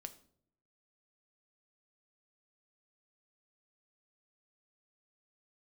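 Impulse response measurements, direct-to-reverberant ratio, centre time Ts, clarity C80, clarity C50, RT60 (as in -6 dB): 8.5 dB, 6 ms, 18.5 dB, 15.0 dB, no single decay rate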